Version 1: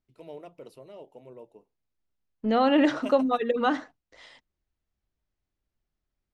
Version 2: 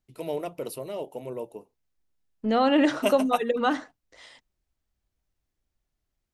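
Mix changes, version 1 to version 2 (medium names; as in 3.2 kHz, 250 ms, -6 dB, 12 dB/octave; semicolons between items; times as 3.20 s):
first voice +11.5 dB; master: remove distance through air 69 m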